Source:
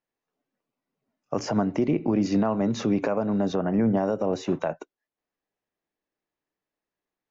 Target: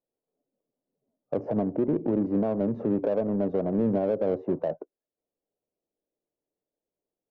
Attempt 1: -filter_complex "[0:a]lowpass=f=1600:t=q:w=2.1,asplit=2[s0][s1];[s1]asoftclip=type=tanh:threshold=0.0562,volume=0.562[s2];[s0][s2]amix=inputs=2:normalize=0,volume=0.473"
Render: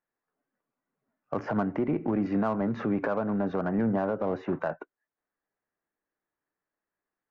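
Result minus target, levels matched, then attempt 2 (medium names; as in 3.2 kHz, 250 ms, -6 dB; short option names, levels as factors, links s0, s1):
2 kHz band +13.5 dB
-filter_complex "[0:a]lowpass=f=540:t=q:w=2.1,asplit=2[s0][s1];[s1]asoftclip=type=tanh:threshold=0.0562,volume=0.562[s2];[s0][s2]amix=inputs=2:normalize=0,volume=0.473"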